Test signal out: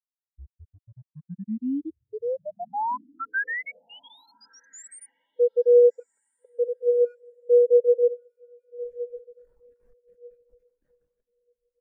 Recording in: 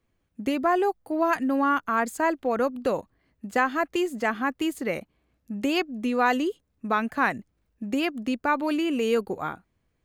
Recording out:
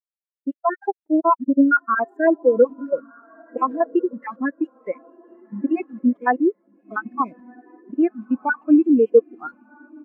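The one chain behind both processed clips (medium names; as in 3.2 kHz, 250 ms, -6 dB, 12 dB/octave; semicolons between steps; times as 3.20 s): random holes in the spectrogram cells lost 48%; fifteen-band graphic EQ 100 Hz -10 dB, 1.6 kHz +3 dB, 4 kHz -11 dB; level rider gain up to 7 dB; speakerphone echo 180 ms, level -20 dB; bit crusher 5-bit; echo that smears into a reverb 1343 ms, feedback 45%, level -7.5 dB; spectral contrast expander 2.5:1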